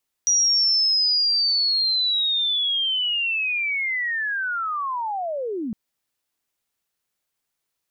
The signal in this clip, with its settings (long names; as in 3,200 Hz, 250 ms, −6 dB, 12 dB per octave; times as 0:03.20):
glide linear 5,800 Hz → 200 Hz −15.5 dBFS → −25 dBFS 5.46 s